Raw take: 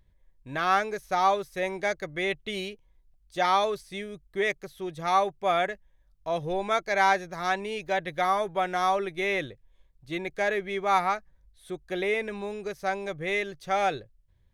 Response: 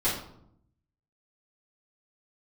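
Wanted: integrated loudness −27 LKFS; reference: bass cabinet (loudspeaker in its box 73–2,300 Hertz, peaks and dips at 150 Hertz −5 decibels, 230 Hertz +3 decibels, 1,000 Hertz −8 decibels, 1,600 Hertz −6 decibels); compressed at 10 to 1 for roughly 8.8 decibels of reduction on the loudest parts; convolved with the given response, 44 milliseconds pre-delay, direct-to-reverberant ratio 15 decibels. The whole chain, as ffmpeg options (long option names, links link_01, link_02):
-filter_complex "[0:a]acompressor=threshold=-26dB:ratio=10,asplit=2[link_01][link_02];[1:a]atrim=start_sample=2205,adelay=44[link_03];[link_02][link_03]afir=irnorm=-1:irlink=0,volume=-25.5dB[link_04];[link_01][link_04]amix=inputs=2:normalize=0,highpass=frequency=73:width=0.5412,highpass=frequency=73:width=1.3066,equalizer=frequency=150:width_type=q:width=4:gain=-5,equalizer=frequency=230:width_type=q:width=4:gain=3,equalizer=frequency=1000:width_type=q:width=4:gain=-8,equalizer=frequency=1600:width_type=q:width=4:gain=-6,lowpass=frequency=2300:width=0.5412,lowpass=frequency=2300:width=1.3066,volume=7.5dB"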